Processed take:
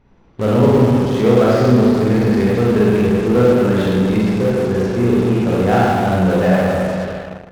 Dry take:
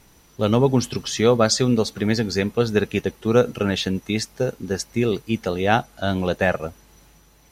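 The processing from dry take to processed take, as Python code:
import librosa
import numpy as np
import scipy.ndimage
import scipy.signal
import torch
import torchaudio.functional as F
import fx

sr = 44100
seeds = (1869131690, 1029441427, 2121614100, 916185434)

p1 = fx.spacing_loss(x, sr, db_at_10k=43)
p2 = fx.rev_schroeder(p1, sr, rt60_s=2.0, comb_ms=33, drr_db=-7.0)
p3 = fx.fuzz(p2, sr, gain_db=33.0, gate_db=-36.0)
p4 = p2 + (p3 * librosa.db_to_amplitude(-9.5))
y = p4 * librosa.db_to_amplitude(-1.0)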